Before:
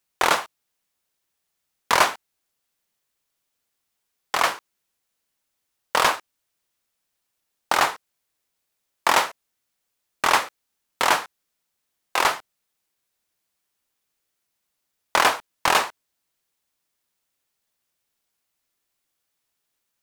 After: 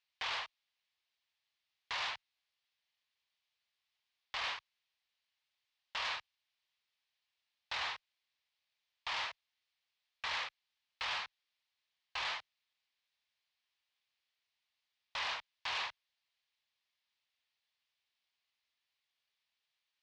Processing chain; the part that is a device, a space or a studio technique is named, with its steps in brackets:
scooped metal amplifier (tube saturation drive 34 dB, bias 0.7; loudspeaker in its box 100–4,200 Hz, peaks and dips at 150 Hz −10 dB, 300 Hz +7 dB, 1,400 Hz −6 dB; guitar amp tone stack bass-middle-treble 10-0-10)
level +6 dB

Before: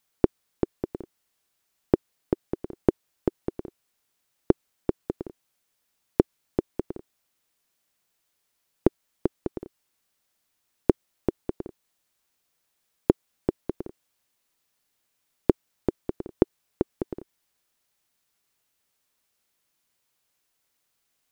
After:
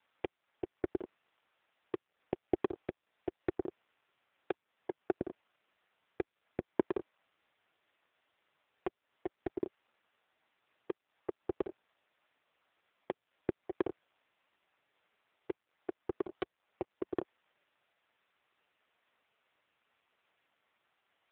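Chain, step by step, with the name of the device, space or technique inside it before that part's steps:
voicemail (band-pass filter 350–2,800 Hz; downward compressor 8 to 1, threshold −31 dBFS, peak gain reduction 15.5 dB; level +11.5 dB; AMR narrowband 5.9 kbit/s 8,000 Hz)

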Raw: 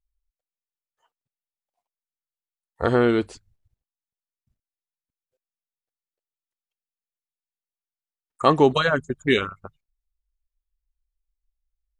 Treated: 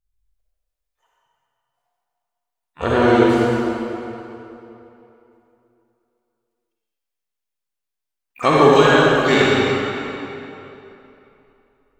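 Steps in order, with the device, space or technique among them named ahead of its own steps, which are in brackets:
shimmer-style reverb (pitch-shifted copies added +12 semitones −12 dB; convolution reverb RT60 3.1 s, pre-delay 42 ms, DRR −6.5 dB)

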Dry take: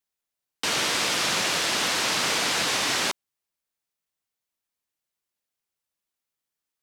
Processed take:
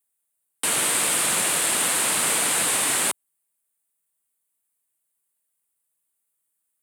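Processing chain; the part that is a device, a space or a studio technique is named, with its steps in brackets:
budget condenser microphone (high-pass filter 87 Hz; high shelf with overshoot 7,100 Hz +9 dB, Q 3)

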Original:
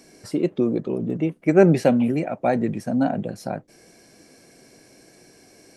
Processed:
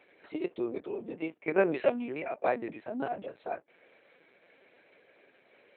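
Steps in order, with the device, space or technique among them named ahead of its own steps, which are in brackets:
talking toy (linear-prediction vocoder at 8 kHz pitch kept; high-pass filter 440 Hz 12 dB per octave; parametric band 2,400 Hz +4 dB 0.53 octaves)
level −5 dB

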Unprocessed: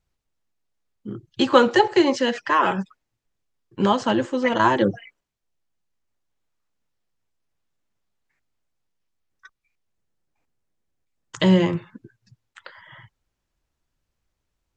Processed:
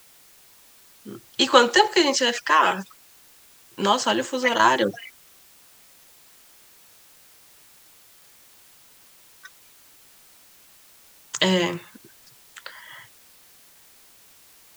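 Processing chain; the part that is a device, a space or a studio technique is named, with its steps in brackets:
turntable without a phono preamp (RIAA equalisation recording; white noise bed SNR 26 dB)
level +1 dB

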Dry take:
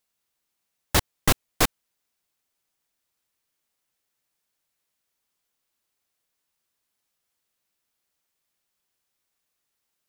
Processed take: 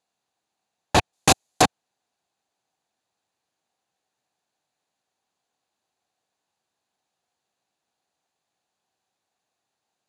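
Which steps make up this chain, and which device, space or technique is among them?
car door speaker with a rattle (loose part that buzzes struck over −22 dBFS, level −11 dBFS; loudspeaker in its box 100–8,500 Hz, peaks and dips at 760 Hz +9 dB, 1,300 Hz −4 dB, 2,100 Hz −7 dB, 3,100 Hz −5 dB, 5,400 Hz −9 dB, 8,400 Hz −10 dB)
0:01.13–0:01.62: bass and treble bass −2 dB, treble +11 dB
level +4.5 dB

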